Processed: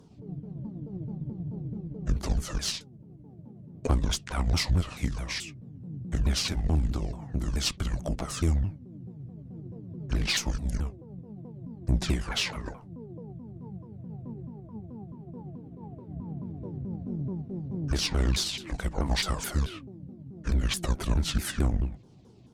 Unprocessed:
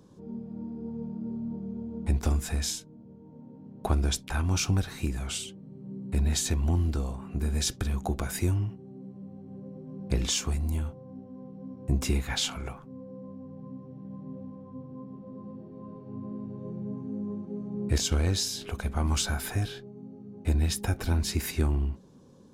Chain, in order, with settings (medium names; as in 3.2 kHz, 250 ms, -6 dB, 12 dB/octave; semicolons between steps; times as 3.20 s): sawtooth pitch modulation -9 st, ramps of 216 ms; Chebyshev shaper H 8 -25 dB, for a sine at -11.5 dBFS; trim +1.5 dB